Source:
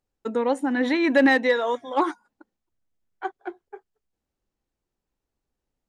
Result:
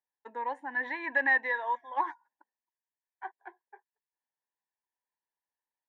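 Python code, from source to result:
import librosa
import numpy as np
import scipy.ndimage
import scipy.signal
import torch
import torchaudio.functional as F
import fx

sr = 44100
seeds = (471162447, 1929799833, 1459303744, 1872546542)

y = fx.double_bandpass(x, sr, hz=1300.0, octaves=0.83)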